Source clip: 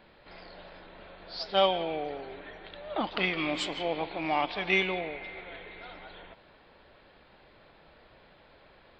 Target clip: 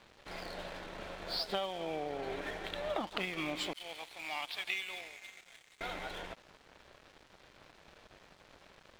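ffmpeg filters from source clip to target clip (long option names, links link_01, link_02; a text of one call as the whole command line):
ffmpeg -i in.wav -filter_complex "[0:a]asettb=1/sr,asplit=3[link_01][link_02][link_03];[link_01]atrim=end=3.734[link_04];[link_02]atrim=start=3.73:end=5.81,asetpts=PTS-STARTPTS,afade=type=in:duration=0.004:curve=qsin,afade=type=out:start_time=2.076:duration=0.004:curve=qsin,aderivative[link_05];[link_03]atrim=start=5.806[link_06];[link_04][link_05]acrossfade=duration=0.004:curve1=hsin:curve2=qsin[link_07];[link_07][link_06]acrossfade=duration=0.004:curve1=qsin:curve2=hsin,acompressor=threshold=-39dB:ratio=20,aeval=exprs='sgn(val(0))*max(abs(val(0))-0.0015,0)':channel_layout=same,volume=7.5dB" out.wav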